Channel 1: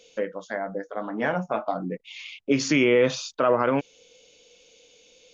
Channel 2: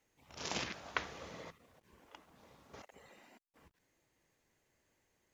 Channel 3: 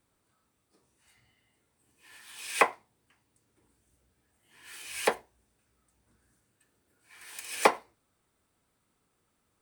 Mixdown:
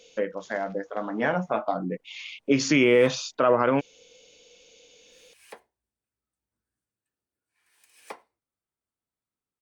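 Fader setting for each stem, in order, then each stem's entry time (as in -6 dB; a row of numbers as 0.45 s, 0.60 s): +0.5 dB, -17.0 dB, -19.0 dB; 0.00 s, 0.00 s, 0.45 s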